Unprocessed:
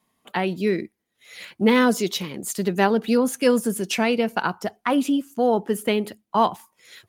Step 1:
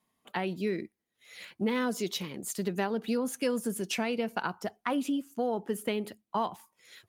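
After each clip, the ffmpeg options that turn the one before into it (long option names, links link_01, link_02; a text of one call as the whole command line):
ffmpeg -i in.wav -af "acompressor=threshold=-19dB:ratio=4,volume=-7dB" out.wav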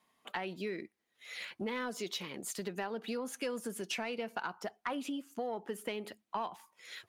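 ffmpeg -i in.wav -filter_complex "[0:a]asplit=2[link_01][link_02];[link_02]highpass=frequency=720:poles=1,volume=12dB,asoftclip=type=tanh:threshold=-13dB[link_03];[link_01][link_03]amix=inputs=2:normalize=0,lowpass=frequency=4200:poles=1,volume=-6dB,acompressor=threshold=-42dB:ratio=2" out.wav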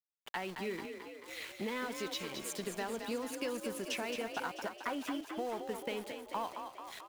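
ffmpeg -i in.wav -filter_complex "[0:a]aeval=exprs='val(0)*gte(abs(val(0)),0.00531)':channel_layout=same,asplit=2[link_01][link_02];[link_02]asplit=8[link_03][link_04][link_05][link_06][link_07][link_08][link_09][link_10];[link_03]adelay=219,afreqshift=37,volume=-7dB[link_11];[link_04]adelay=438,afreqshift=74,volume=-11.2dB[link_12];[link_05]adelay=657,afreqshift=111,volume=-15.3dB[link_13];[link_06]adelay=876,afreqshift=148,volume=-19.5dB[link_14];[link_07]adelay=1095,afreqshift=185,volume=-23.6dB[link_15];[link_08]adelay=1314,afreqshift=222,volume=-27.8dB[link_16];[link_09]adelay=1533,afreqshift=259,volume=-31.9dB[link_17];[link_10]adelay=1752,afreqshift=296,volume=-36.1dB[link_18];[link_11][link_12][link_13][link_14][link_15][link_16][link_17][link_18]amix=inputs=8:normalize=0[link_19];[link_01][link_19]amix=inputs=2:normalize=0,volume=-1dB" out.wav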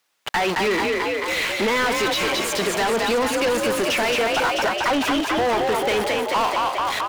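ffmpeg -i in.wav -filter_complex "[0:a]asplit=2[link_01][link_02];[link_02]highpass=frequency=720:poles=1,volume=31dB,asoftclip=type=tanh:threshold=-20.5dB[link_03];[link_01][link_03]amix=inputs=2:normalize=0,lowpass=frequency=3100:poles=1,volume=-6dB,volume=8dB" out.wav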